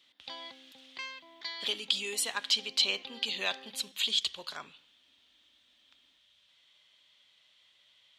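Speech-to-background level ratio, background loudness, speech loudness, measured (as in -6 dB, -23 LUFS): 14.0 dB, -45.0 LUFS, -31.0 LUFS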